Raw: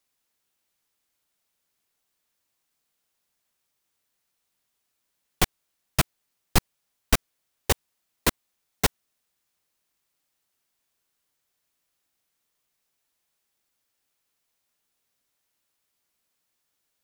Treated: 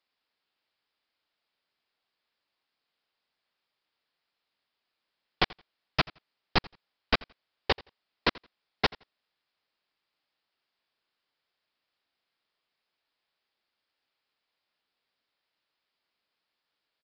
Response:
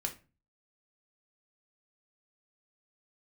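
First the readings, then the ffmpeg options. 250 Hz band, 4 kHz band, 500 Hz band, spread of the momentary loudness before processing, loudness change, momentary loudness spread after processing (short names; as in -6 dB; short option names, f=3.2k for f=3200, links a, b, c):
-4.5 dB, -0.5 dB, -1.5 dB, 2 LU, -3.5 dB, 2 LU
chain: -af "lowshelf=f=200:g=-11,aecho=1:1:85|170:0.075|0.0142,aresample=11025,aresample=44100"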